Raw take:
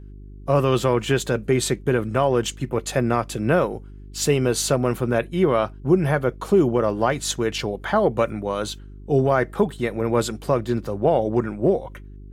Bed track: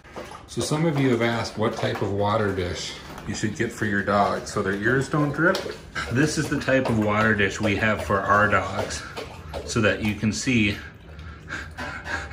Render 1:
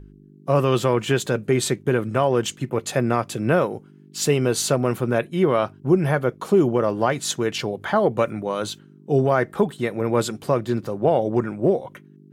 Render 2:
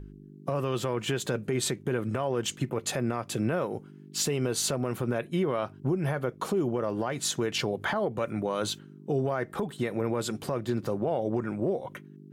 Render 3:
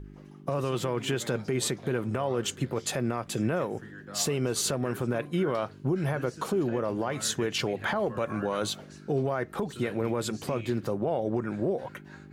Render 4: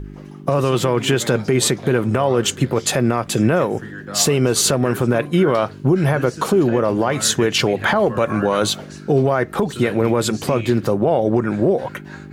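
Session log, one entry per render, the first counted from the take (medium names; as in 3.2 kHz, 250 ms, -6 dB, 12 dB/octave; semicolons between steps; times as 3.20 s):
de-hum 50 Hz, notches 2
compression, threshold -23 dBFS, peak gain reduction 11.5 dB; peak limiter -18.5 dBFS, peak gain reduction 7.5 dB
add bed track -22.5 dB
trim +12 dB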